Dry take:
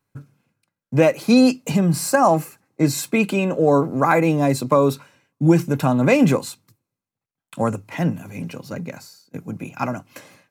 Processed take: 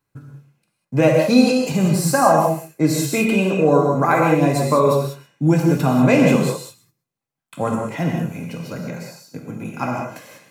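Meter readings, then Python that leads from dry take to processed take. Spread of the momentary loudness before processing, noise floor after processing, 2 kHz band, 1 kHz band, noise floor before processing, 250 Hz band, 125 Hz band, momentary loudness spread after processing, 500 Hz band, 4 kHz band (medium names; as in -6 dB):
17 LU, -80 dBFS, +1.5 dB, +2.5 dB, under -85 dBFS, +1.0 dB, +2.0 dB, 16 LU, +2.0 dB, +2.0 dB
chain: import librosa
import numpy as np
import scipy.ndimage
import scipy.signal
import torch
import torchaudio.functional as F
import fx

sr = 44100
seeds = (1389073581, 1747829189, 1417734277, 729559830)

y = x + 10.0 ** (-18.0 / 20.0) * np.pad(x, (int(128 * sr / 1000.0), 0))[:len(x)]
y = fx.rev_gated(y, sr, seeds[0], gate_ms=220, shape='flat', drr_db=-0.5)
y = y * librosa.db_to_amplitude(-1.5)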